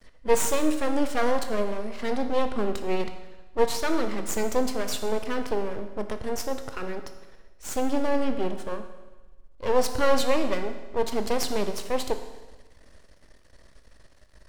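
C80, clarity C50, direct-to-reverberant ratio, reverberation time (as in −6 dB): 10.5 dB, 9.0 dB, 7.0 dB, 1.2 s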